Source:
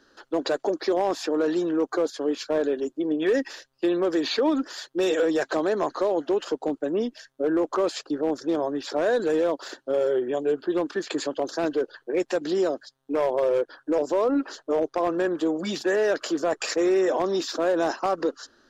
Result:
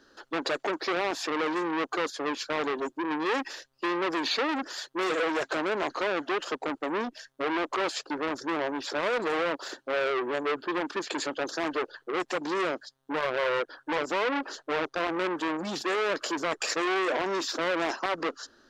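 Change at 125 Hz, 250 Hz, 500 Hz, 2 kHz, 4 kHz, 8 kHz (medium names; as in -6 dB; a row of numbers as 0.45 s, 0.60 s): -5.0 dB, -7.0 dB, -7.0 dB, +4.0 dB, +1.0 dB, no reading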